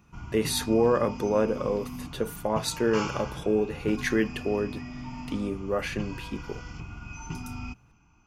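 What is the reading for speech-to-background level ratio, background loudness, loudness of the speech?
11.0 dB, -39.0 LUFS, -28.0 LUFS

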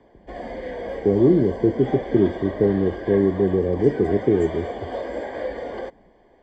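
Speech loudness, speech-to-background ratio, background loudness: -20.5 LUFS, 11.5 dB, -32.0 LUFS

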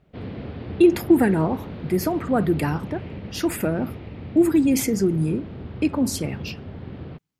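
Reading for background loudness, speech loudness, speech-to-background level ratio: -36.0 LUFS, -22.0 LUFS, 14.0 dB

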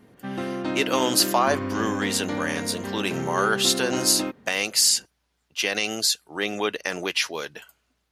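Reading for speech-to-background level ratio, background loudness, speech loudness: 6.5 dB, -30.0 LUFS, -23.5 LUFS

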